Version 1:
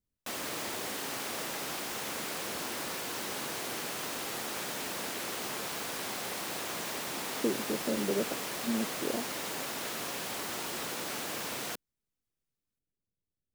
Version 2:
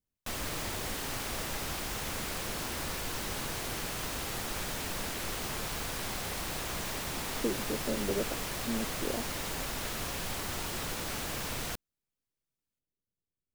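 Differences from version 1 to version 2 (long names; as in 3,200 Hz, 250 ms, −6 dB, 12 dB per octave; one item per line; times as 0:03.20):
background: remove high-pass filter 260 Hz 12 dB per octave
master: add low-shelf EQ 380 Hz −3.5 dB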